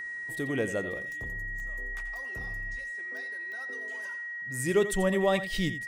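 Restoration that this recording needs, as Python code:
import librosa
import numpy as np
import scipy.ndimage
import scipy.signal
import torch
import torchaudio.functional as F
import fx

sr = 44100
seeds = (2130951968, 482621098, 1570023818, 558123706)

y = fx.fix_declick_ar(x, sr, threshold=10.0)
y = fx.notch(y, sr, hz=1900.0, q=30.0)
y = fx.fix_echo_inverse(y, sr, delay_ms=86, level_db=-12.5)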